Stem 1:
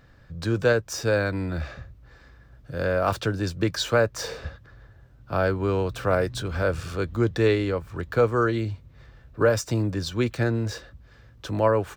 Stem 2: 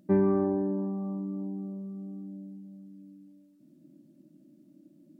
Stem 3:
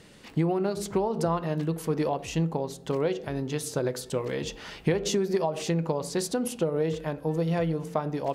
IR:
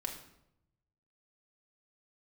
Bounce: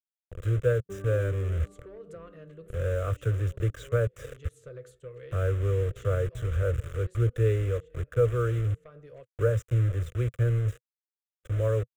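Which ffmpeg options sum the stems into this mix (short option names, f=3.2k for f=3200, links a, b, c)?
-filter_complex "[0:a]acrusher=bits=4:mix=0:aa=0.000001,tiltshelf=f=770:g=5,bandreject=f=4.3k:w=5.5,volume=-2dB,asplit=2[a][b];[1:a]agate=range=-33dB:threshold=-48dB:ratio=3:detection=peak,asplit=2[c][d];[d]adelay=2.4,afreqshift=1.5[e];[c][e]amix=inputs=2:normalize=1,adelay=800,volume=1dB[f];[2:a]asoftclip=type=tanh:threshold=-19dB,adelay=900,volume=-8dB[g];[b]apad=whole_len=407804[h];[g][h]sidechaincompress=threshold=-33dB:ratio=5:attack=7.3:release=254[i];[a][f][i]amix=inputs=3:normalize=0,firequalizer=gain_entry='entry(120,0);entry(200,-25);entry(490,-2);entry(860,-30);entry(1200,-6);entry(3300,-10);entry(4900,-23);entry(7200,-9);entry(11000,-16)':delay=0.05:min_phase=1,agate=range=-33dB:threshold=-50dB:ratio=3:detection=peak"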